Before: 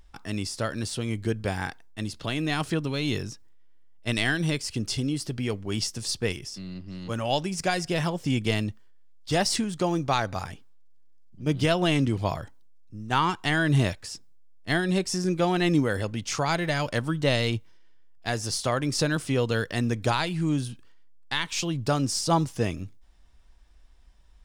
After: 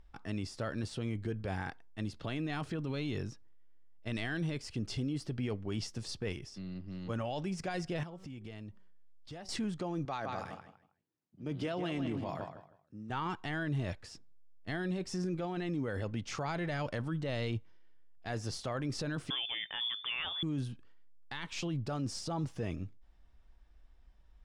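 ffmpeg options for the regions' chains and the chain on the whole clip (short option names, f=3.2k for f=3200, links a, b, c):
-filter_complex "[0:a]asettb=1/sr,asplit=3[a][b][c];[a]atrim=end=8.034[d];[b]atrim=start=8.03:end=9.49,asetpts=PTS-STARTPTS,afade=t=in:d=0.004:c=qsin,afade=t=out:st=1.456:d=0.004:c=qsin,bandreject=f=189.9:t=h:w=4,bandreject=f=379.8:t=h:w=4,bandreject=f=569.7:t=h:w=4,bandreject=f=759.6:t=h:w=4,bandreject=f=949.5:t=h:w=4,bandreject=f=1.1394k:t=h:w=4,bandreject=f=1.3293k:t=h:w=4,acompressor=threshold=-38dB:ratio=8:attack=3.2:release=140:knee=1:detection=peak[e];[c]atrim=start=9.486[f];[d][e]acrossfade=d=0.004:c1=hsin:c2=qsin[g];[g][f]acrossfade=d=0.004:c1=qsin:c2=hsin,asettb=1/sr,asplit=3[h][i][j];[h]atrim=end=10.054[k];[i]atrim=start=10.05:end=13.1,asetpts=PTS-STARTPTS,afade=t=in:d=0.004:c=qsin,afade=t=out:st=3.046:d=0.004:c=qsin,highpass=160,asplit=2[l][m];[m]adelay=158,lowpass=f=3.9k:p=1,volume=-9.5dB,asplit=2[n][o];[o]adelay=158,lowpass=f=3.9k:p=1,volume=0.24,asplit=2[p][q];[q]adelay=158,lowpass=f=3.9k:p=1,volume=0.24[r];[l][n][p][r]amix=inputs=4:normalize=0,atrim=end_sample=134505[s];[j]atrim=start=13.096[t];[k][s]acrossfade=d=0.004:c1=hsin:c2=qsin[u];[u][t]acrossfade=d=0.004:c1=qsin:c2=hsin,asettb=1/sr,asplit=3[v][w][x];[v]atrim=end=19.304[y];[w]atrim=start=19.3:end=20.43,asetpts=PTS-STARTPTS,afade=t=in:d=0.004:c=qsin,afade=t=out:st=1.126:d=0.004:c=qsin,equalizer=f=800:t=o:w=0.76:g=8,lowpass=f=3.1k:t=q:w=0.5098,lowpass=f=3.1k:t=q:w=0.6013,lowpass=f=3.1k:t=q:w=0.9,lowpass=f=3.1k:t=q:w=2.563,afreqshift=-3600[z];[x]atrim=start=20.426[aa];[y][z]acrossfade=d=0.004:c1=hsin:c2=qsin[ab];[ab][aa]acrossfade=d=0.004:c1=qsin:c2=hsin,aemphasis=mode=reproduction:type=75kf,bandreject=f=1k:w=25,alimiter=limit=-23.5dB:level=0:latency=1:release=12,volume=-4.5dB"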